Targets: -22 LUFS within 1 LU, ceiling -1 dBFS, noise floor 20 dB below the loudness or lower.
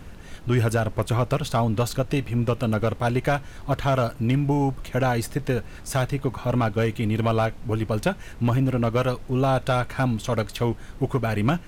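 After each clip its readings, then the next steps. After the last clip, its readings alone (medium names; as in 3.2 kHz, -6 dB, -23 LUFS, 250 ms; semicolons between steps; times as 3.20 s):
clipped samples 0.3%; clipping level -13.5 dBFS; noise floor -41 dBFS; noise floor target -45 dBFS; loudness -24.5 LUFS; peak level -13.5 dBFS; loudness target -22.0 LUFS
-> clip repair -13.5 dBFS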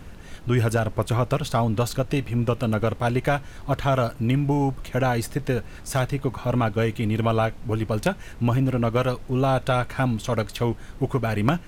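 clipped samples 0.0%; noise floor -41 dBFS; noise floor target -45 dBFS
-> noise print and reduce 6 dB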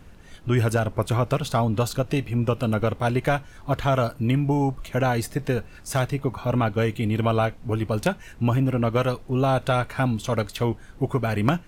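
noise floor -45 dBFS; loudness -24.5 LUFS; peak level -4.5 dBFS; loudness target -22.0 LUFS
-> trim +2.5 dB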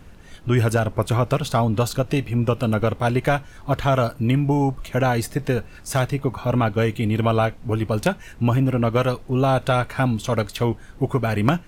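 loudness -22.0 LUFS; peak level -2.0 dBFS; noise floor -43 dBFS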